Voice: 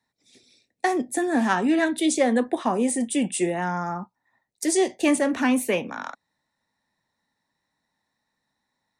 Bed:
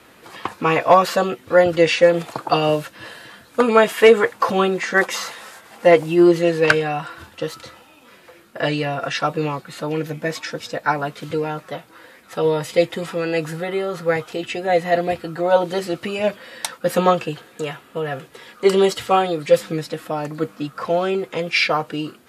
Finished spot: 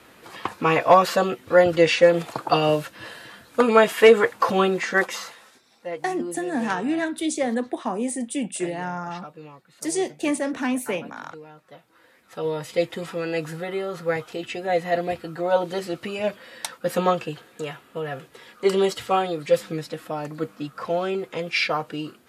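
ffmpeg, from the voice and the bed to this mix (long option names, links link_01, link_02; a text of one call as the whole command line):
ffmpeg -i stem1.wav -i stem2.wav -filter_complex "[0:a]adelay=5200,volume=-3.5dB[link_01];[1:a]volume=13dB,afade=type=out:start_time=4.81:duration=0.78:silence=0.125893,afade=type=in:start_time=11.58:duration=1.41:silence=0.177828[link_02];[link_01][link_02]amix=inputs=2:normalize=0" out.wav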